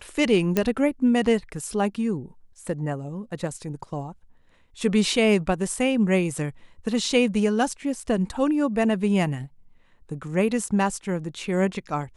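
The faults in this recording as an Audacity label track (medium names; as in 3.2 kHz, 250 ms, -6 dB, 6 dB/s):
0.570000	0.570000	pop -8 dBFS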